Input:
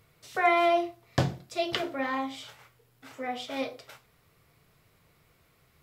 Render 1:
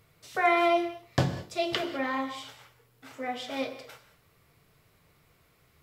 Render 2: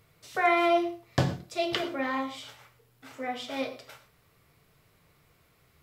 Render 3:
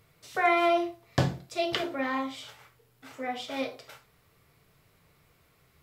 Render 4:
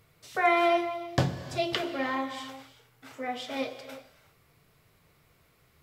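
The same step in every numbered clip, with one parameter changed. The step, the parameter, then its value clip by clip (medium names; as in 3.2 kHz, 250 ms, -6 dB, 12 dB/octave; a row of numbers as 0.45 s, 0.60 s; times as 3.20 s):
gated-style reverb, gate: 230 ms, 140 ms, 90 ms, 400 ms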